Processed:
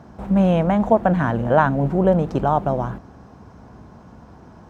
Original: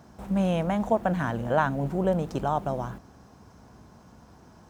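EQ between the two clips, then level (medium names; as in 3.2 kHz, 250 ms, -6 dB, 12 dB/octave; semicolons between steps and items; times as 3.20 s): low-pass 1.8 kHz 6 dB/octave; +8.5 dB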